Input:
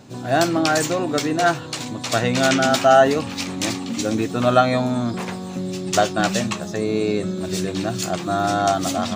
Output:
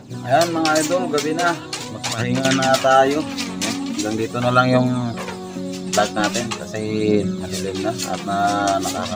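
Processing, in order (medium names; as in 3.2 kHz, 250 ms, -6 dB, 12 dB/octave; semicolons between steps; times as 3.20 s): 2.05–2.45 s: compressor with a negative ratio -24 dBFS, ratio -1; phaser 0.42 Hz, delay 4.7 ms, feedback 50%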